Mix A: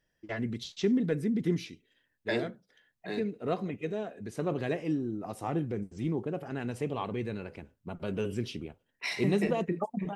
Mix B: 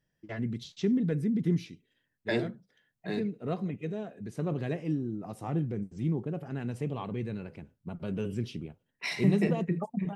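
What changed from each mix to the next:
first voice -4.5 dB; master: add bell 150 Hz +9 dB 1.4 oct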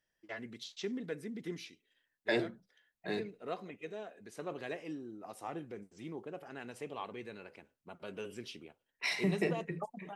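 first voice: add HPF 640 Hz 6 dB/oct; master: add bell 150 Hz -9 dB 1.4 oct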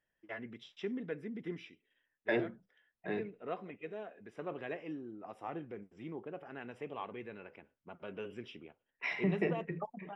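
second voice: add air absorption 70 m; master: add polynomial smoothing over 25 samples

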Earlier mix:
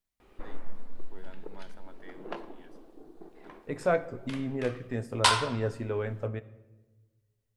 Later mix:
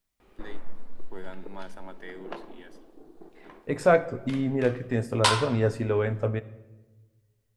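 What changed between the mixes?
first voice +9.0 dB; second voice +6.5 dB

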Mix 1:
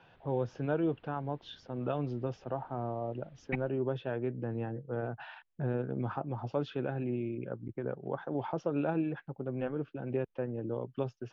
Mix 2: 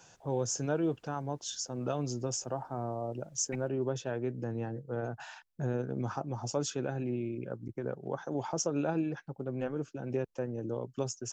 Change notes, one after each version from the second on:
second voice -8.0 dB; master: remove steep low-pass 3500 Hz 36 dB/oct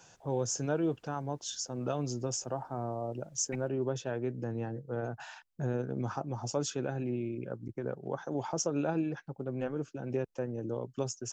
none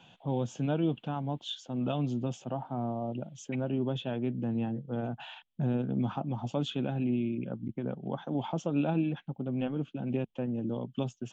second voice: add HPF 920 Hz 12 dB/oct; master: add EQ curve 100 Hz 0 dB, 220 Hz +10 dB, 420 Hz -4 dB, 740 Hz +2 dB, 1700 Hz -5 dB, 3300 Hz +12 dB, 5200 Hz -19 dB, 8200 Hz -15 dB

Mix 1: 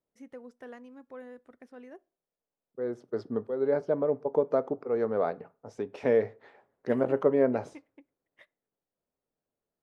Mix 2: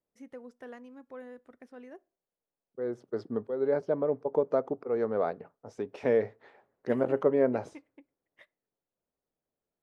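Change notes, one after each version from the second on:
second voice: send -10.0 dB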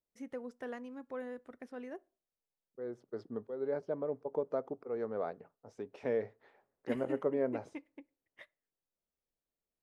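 first voice +3.0 dB; second voice -8.0 dB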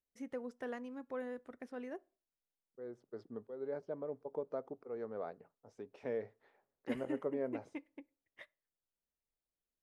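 second voice -5.5 dB

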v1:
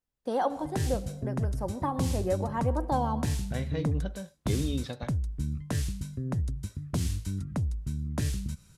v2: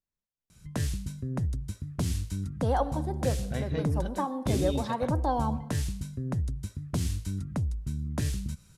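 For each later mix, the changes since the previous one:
first voice: entry +2.35 s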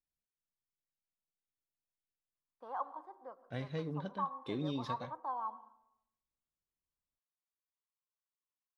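first voice: add band-pass 1100 Hz, Q 6; second voice -5.5 dB; background: muted

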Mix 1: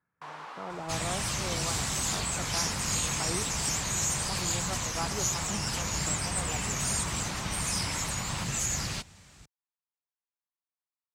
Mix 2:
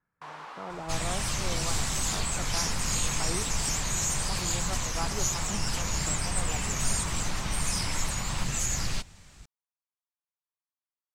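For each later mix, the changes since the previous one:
master: remove HPF 66 Hz 12 dB/oct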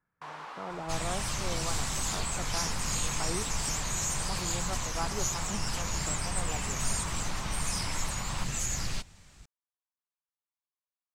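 second sound -3.0 dB

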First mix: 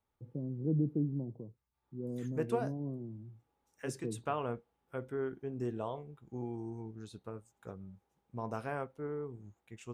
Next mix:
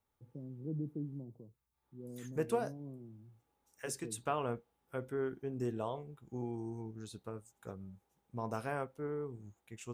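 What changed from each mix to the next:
first voice -8.0 dB; master: add high shelf 6300 Hz +10 dB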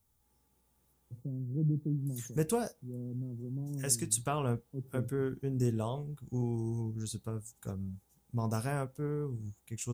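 first voice: entry +0.90 s; master: add tone controls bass +12 dB, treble +14 dB

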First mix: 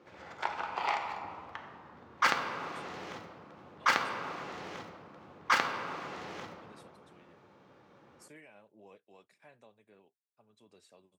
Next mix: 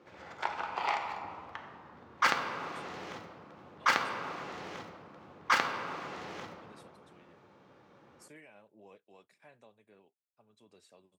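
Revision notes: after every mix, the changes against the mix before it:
none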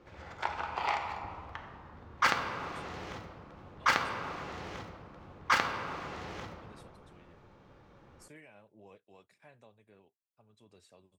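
master: remove HPF 170 Hz 12 dB/oct

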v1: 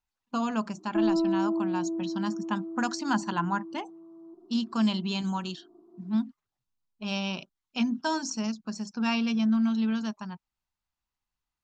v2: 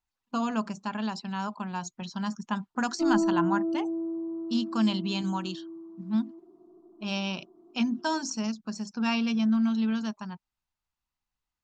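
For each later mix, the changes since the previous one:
background: entry +2.05 s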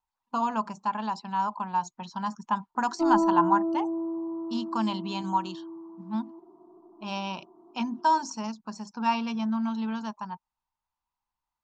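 speech -4.5 dB; master: add bell 930 Hz +15 dB 0.66 oct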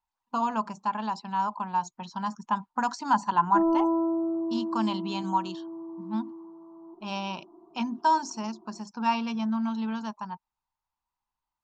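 background: entry +0.55 s

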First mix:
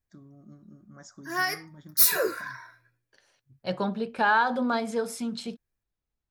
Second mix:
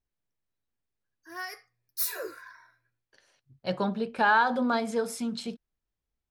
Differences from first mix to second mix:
first voice: muted; background -10.5 dB

